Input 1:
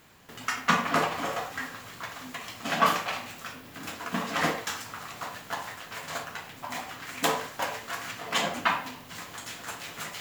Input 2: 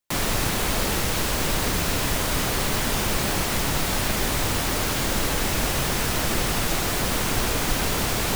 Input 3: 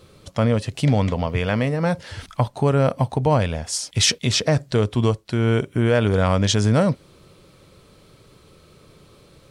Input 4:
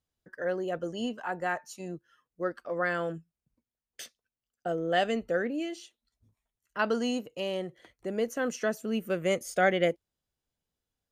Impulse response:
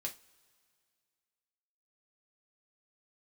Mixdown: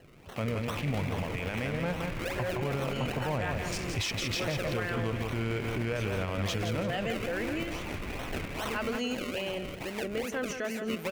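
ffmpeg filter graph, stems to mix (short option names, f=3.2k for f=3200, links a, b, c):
-filter_complex "[0:a]equalizer=f=4.3k:t=o:w=1.1:g=14.5,volume=-5dB[a];[1:a]lowpass=f=2.7k:w=0.5412,lowpass=f=2.7k:w=1.3066,volume=23.5dB,asoftclip=hard,volume=-23.5dB,adelay=600,volume=-11dB,asplit=2[b][c];[c]volume=-5dB[d];[2:a]adynamicsmooth=sensitivity=4.5:basefreq=930,volume=-10dB,asplit=3[e][f][g];[f]volume=-6dB[h];[3:a]adelay=1800,volume=2dB,asplit=2[i][j];[j]volume=-4.5dB[k];[g]apad=whole_len=395132[l];[b][l]sidechaincompress=threshold=-34dB:ratio=8:attack=16:release=297[m];[a][m][i]amix=inputs=3:normalize=0,acrusher=samples=36:mix=1:aa=0.000001:lfo=1:lforange=36:lforate=2.4,acompressor=threshold=-38dB:ratio=2.5,volume=0dB[n];[4:a]atrim=start_sample=2205[o];[d][o]afir=irnorm=-1:irlink=0[p];[h][k]amix=inputs=2:normalize=0,aecho=0:1:169|338|507|676:1|0.3|0.09|0.027[q];[e][n][p][q]amix=inputs=4:normalize=0,equalizer=f=2.4k:t=o:w=0.6:g=9,alimiter=limit=-23dB:level=0:latency=1:release=57"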